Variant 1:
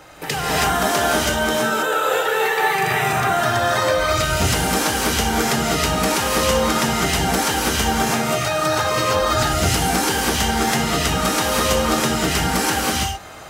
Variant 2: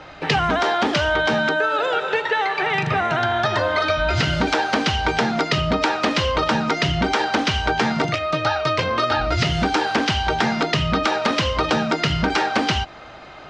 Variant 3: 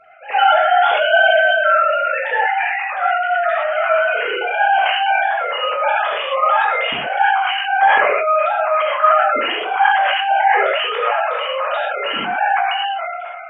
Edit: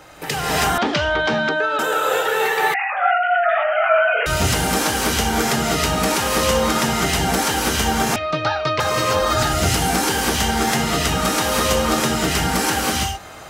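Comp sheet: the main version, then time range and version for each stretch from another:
1
0.78–1.79 from 2
2.74–4.26 from 3
8.16–8.8 from 2

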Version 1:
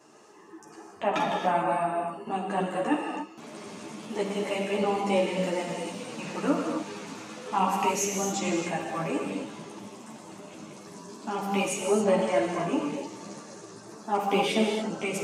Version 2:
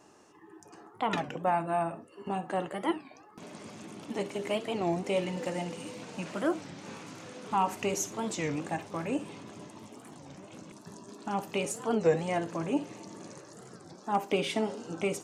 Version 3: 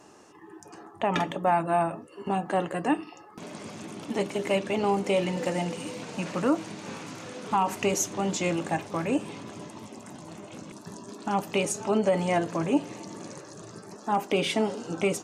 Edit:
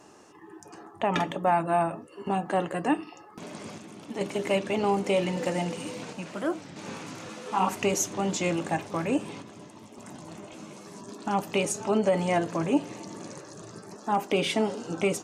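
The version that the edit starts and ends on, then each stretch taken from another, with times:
3
3.78–4.21 from 2
6.13–6.76 from 2
7.29–7.69 from 1
9.42–9.98 from 2
10.53–11.01 from 1

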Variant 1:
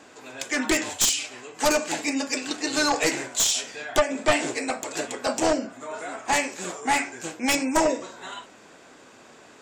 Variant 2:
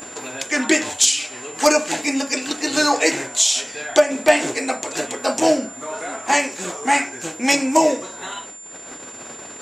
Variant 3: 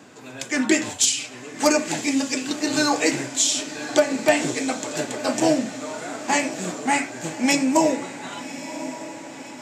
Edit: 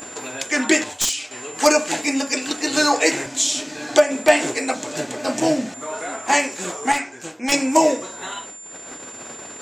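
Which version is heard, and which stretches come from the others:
2
0.84–1.31 from 1
3.26–3.96 from 3
4.74–5.74 from 3
6.92–7.52 from 1

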